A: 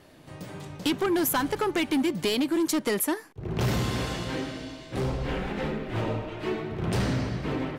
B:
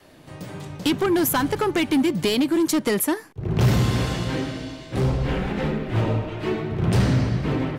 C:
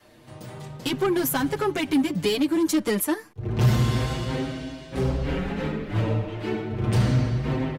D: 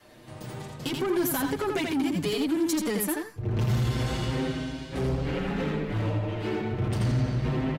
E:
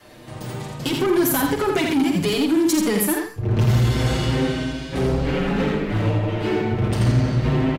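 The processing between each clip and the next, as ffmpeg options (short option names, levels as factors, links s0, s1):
-af "adynamicequalizer=threshold=0.00891:dfrequency=110:dqfactor=0.7:tfrequency=110:tqfactor=0.7:attack=5:release=100:ratio=0.375:range=3:mode=boostabove:tftype=bell,volume=1.5"
-filter_complex "[0:a]asplit=2[s0][s1];[s1]adelay=6.3,afreqshift=0.3[s2];[s0][s2]amix=inputs=2:normalize=1"
-filter_complex "[0:a]alimiter=limit=0.119:level=0:latency=1:release=80,asoftclip=type=tanh:threshold=0.0794,asplit=2[s0][s1];[s1]aecho=0:1:84:0.631[s2];[s0][s2]amix=inputs=2:normalize=0"
-filter_complex "[0:a]asplit=2[s0][s1];[s1]adelay=49,volume=0.398[s2];[s0][s2]amix=inputs=2:normalize=0,volume=2.24"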